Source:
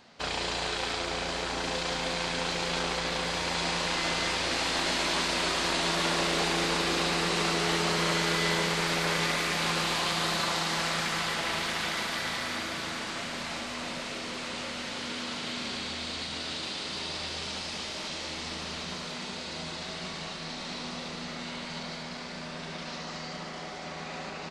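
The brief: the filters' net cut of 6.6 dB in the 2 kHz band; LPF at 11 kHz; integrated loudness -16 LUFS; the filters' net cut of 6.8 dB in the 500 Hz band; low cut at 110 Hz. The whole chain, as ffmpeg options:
-af "highpass=110,lowpass=11000,equalizer=f=500:t=o:g=-8.5,equalizer=f=2000:t=o:g=-8,volume=7.5"

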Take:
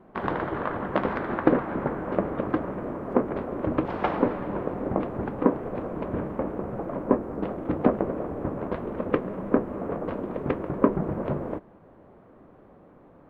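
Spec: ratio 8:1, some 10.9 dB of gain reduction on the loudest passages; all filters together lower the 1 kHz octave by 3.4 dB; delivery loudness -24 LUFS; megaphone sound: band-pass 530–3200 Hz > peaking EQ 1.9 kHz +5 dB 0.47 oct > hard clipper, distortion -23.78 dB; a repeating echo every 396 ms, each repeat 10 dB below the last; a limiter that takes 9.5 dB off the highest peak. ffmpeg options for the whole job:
-af "equalizer=f=1000:t=o:g=-4,acompressor=threshold=0.0398:ratio=8,alimiter=limit=0.0708:level=0:latency=1,highpass=530,lowpass=3200,equalizer=f=1900:t=o:w=0.47:g=5,aecho=1:1:396|792|1188|1584:0.316|0.101|0.0324|0.0104,asoftclip=type=hard:threshold=0.0355,volume=6.31"

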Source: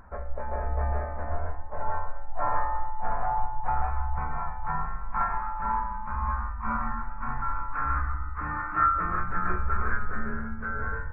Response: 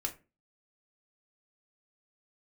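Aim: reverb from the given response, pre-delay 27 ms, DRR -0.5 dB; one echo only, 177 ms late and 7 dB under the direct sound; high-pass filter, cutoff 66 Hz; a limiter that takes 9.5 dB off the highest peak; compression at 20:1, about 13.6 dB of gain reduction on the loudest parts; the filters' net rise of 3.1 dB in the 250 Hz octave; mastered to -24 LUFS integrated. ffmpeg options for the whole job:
-filter_complex "[0:a]highpass=66,equalizer=f=250:t=o:g=4,acompressor=threshold=0.0282:ratio=20,alimiter=level_in=2.11:limit=0.0631:level=0:latency=1,volume=0.473,aecho=1:1:177:0.447,asplit=2[s0][s1];[1:a]atrim=start_sample=2205,adelay=27[s2];[s1][s2]afir=irnorm=-1:irlink=0,volume=0.841[s3];[s0][s3]amix=inputs=2:normalize=0,volume=3.98"

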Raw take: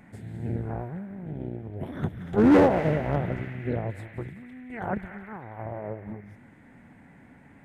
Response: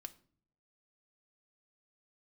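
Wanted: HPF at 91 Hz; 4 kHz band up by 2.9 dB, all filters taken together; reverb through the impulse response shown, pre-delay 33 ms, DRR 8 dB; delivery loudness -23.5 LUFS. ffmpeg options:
-filter_complex "[0:a]highpass=91,equalizer=f=4000:t=o:g=4,asplit=2[s0][s1];[1:a]atrim=start_sample=2205,adelay=33[s2];[s1][s2]afir=irnorm=-1:irlink=0,volume=0.708[s3];[s0][s3]amix=inputs=2:normalize=0,volume=1.5"

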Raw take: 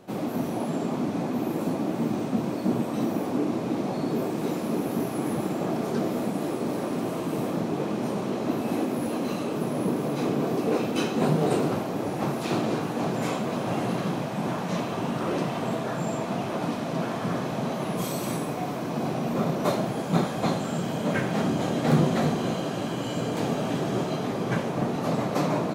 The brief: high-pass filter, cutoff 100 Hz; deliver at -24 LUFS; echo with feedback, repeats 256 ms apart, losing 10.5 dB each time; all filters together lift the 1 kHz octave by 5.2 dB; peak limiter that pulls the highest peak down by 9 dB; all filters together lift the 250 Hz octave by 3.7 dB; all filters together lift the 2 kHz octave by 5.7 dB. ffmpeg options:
-af "highpass=100,equalizer=f=250:t=o:g=4.5,equalizer=f=1000:t=o:g=5.5,equalizer=f=2000:t=o:g=5.5,alimiter=limit=0.2:level=0:latency=1,aecho=1:1:256|512|768:0.299|0.0896|0.0269,volume=1.06"

